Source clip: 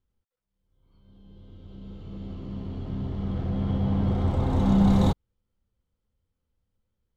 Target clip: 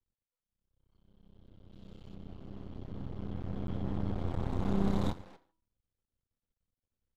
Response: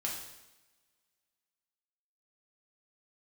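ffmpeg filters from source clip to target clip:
-filter_complex "[0:a]bandreject=f=323.4:t=h:w=4,bandreject=f=646.8:t=h:w=4,bandreject=f=970.2:t=h:w=4,asplit=2[a][b];[b]adelay=240,highpass=300,lowpass=3.4k,asoftclip=type=hard:threshold=-29.5dB,volume=-12dB[c];[a][c]amix=inputs=2:normalize=0,asplit=2[d][e];[1:a]atrim=start_sample=2205,afade=t=out:st=0.21:d=0.01,atrim=end_sample=9702[f];[e][f]afir=irnorm=-1:irlink=0,volume=-11.5dB[g];[d][g]amix=inputs=2:normalize=0,aresample=32000,aresample=44100,asettb=1/sr,asplit=3[h][i][j];[h]atrim=end=1.734[k];[i]atrim=start=1.73:end=2.15,asetpts=PTS-STARTPTS,afade=t=in:d=0.004:c=qsin,afade=t=out:st=0.416:d=0.004:c=qsin,highshelf=f=3k:g=11.5[l];[j]atrim=start=2.146[m];[k][l]acrossfade=d=0.004:c1=hsin:c2=qsin[n];[n][m]acrossfade=d=0.004:c1=qsin:c2=hsin,aeval=exprs='max(val(0),0)':c=same,volume=-8.5dB"

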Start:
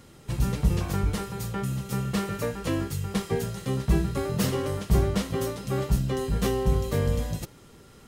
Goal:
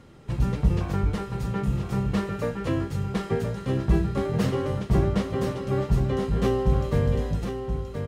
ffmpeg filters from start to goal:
-filter_complex "[0:a]aemphasis=mode=reproduction:type=75kf,asplit=2[a][b];[b]aecho=0:1:1026:0.447[c];[a][c]amix=inputs=2:normalize=0,volume=1.5dB"

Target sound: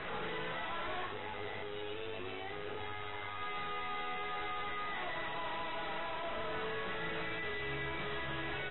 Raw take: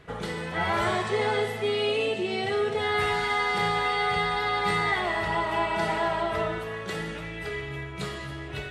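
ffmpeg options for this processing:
-filter_complex "[0:a]highpass=57,acrossover=split=450 3100:gain=0.251 1 0.0794[a][b][c];[a][b][c]amix=inputs=3:normalize=0,alimiter=level_in=12dB:limit=-24dB:level=0:latency=1:release=231,volume=-12dB,acontrast=77,aeval=exprs='(tanh(562*val(0)+0.55)-tanh(0.55))/562':c=same,asplit=3[d][e][f];[d]afade=t=out:st=1.05:d=0.02[g];[e]tremolo=f=100:d=0.71,afade=t=in:st=1.05:d=0.02,afade=t=out:st=3.4:d=0.02[h];[f]afade=t=in:st=3.4:d=0.02[i];[g][h][i]amix=inputs=3:normalize=0,asplit=2[j][k];[k]adelay=43,volume=-8.5dB[l];[j][l]amix=inputs=2:normalize=0,volume=14.5dB" -ar 24000 -c:a aac -b:a 16k

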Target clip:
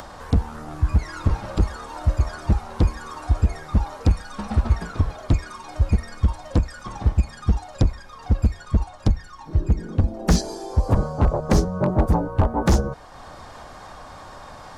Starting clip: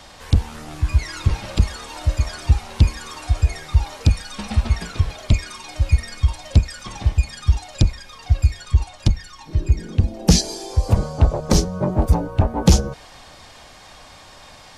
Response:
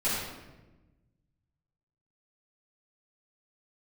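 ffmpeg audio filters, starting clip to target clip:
-af "highshelf=f=1.8k:t=q:w=1.5:g=-8.5,aeval=exprs='0.355*(abs(mod(val(0)/0.355+3,4)-2)-1)':c=same,acompressor=mode=upward:threshold=-33dB:ratio=2.5"

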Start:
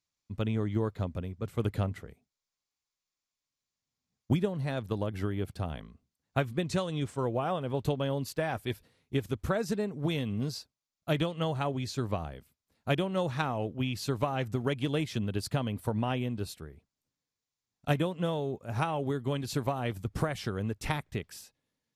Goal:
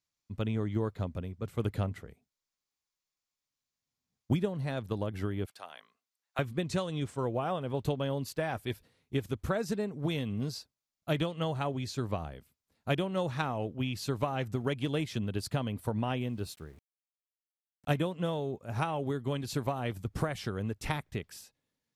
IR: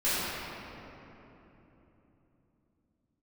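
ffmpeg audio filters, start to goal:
-filter_complex "[0:a]asettb=1/sr,asplit=3[a][b][c];[a]atrim=end=5.464[d];[b]atrim=start=5.46:end=6.39,asetpts=PTS-STARTPTS,afade=t=in:d=0.004:c=qsin,afade=t=out:st=0.926:d=0.004:c=qsin,highpass=920[e];[c]atrim=start=6.386[f];[d][e]acrossfade=d=0.004:c1=hsin:c2=qsin[g];[g][f]acrossfade=d=0.004:c1=qsin:c2=hsin,asettb=1/sr,asplit=3[h][i][j];[h]atrim=end=16.214[k];[i]atrim=start=16.21:end=17.9,asetpts=PTS-STARTPTS,afade=t=in:d=0.004:c=qsin,afade=t=out:st=1.686:d=0.004:c=qsin,aeval=exprs='val(0)*gte(abs(val(0)),0.00133)':c=same[l];[j]atrim=start=17.896[m];[k][l]acrossfade=d=0.004:c1=hsin:c2=qsin[n];[n][m]acrossfade=d=0.004:c1=qsin:c2=hsin,volume=-1.5dB"

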